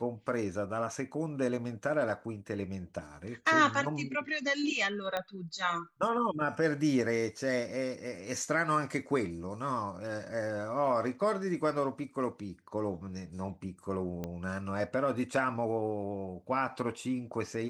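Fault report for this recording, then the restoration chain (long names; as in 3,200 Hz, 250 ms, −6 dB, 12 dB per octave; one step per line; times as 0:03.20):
0:05.17: click −19 dBFS
0:14.24: click −23 dBFS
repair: click removal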